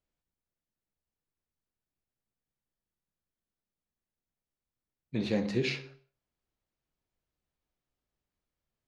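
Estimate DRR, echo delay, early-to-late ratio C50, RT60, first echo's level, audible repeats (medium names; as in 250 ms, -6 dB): 11.5 dB, no echo, 15.5 dB, 0.50 s, no echo, no echo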